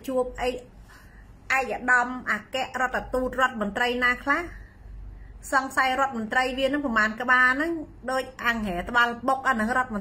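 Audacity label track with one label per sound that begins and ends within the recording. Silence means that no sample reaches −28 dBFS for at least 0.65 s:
1.500000	4.460000	sound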